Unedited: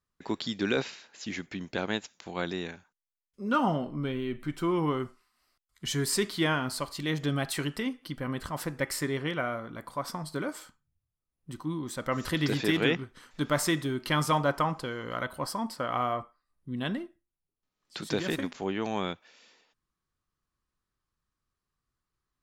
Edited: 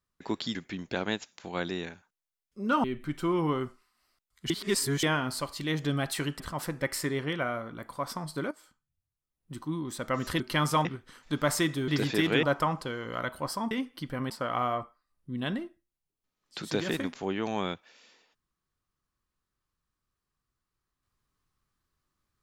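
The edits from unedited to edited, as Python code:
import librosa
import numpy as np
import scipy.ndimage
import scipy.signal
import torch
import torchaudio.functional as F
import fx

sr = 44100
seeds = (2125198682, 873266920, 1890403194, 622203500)

y = fx.edit(x, sr, fx.cut(start_s=0.55, length_s=0.82),
    fx.cut(start_s=3.66, length_s=0.57),
    fx.reverse_span(start_s=5.89, length_s=0.53),
    fx.move(start_s=7.79, length_s=0.59, to_s=15.69),
    fx.fade_in_from(start_s=10.49, length_s=1.05, floor_db=-15.5),
    fx.swap(start_s=12.38, length_s=0.55, other_s=13.96, other_length_s=0.45), tone=tone)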